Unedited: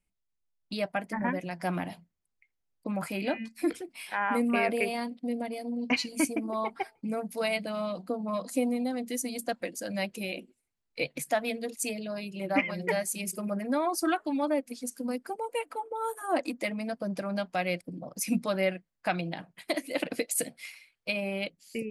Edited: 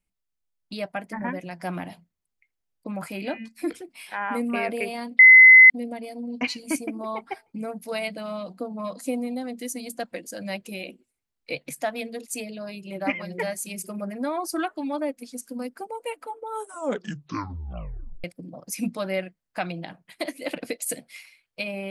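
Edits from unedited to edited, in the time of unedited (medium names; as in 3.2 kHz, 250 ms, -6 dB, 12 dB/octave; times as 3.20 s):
5.19 s: add tone 2.04 kHz -6.5 dBFS 0.51 s
16.01 s: tape stop 1.72 s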